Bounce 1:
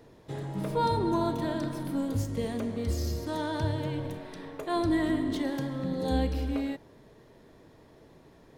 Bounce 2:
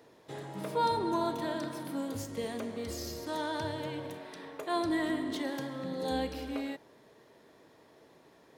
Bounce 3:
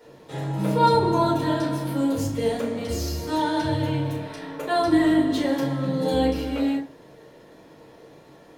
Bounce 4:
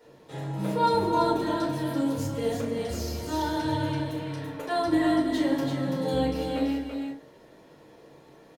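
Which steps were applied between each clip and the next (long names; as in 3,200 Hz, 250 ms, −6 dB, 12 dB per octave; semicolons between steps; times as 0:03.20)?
high-pass filter 450 Hz 6 dB per octave
rectangular room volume 160 cubic metres, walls furnished, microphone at 4.5 metres
single-tap delay 335 ms −4.5 dB; level −5 dB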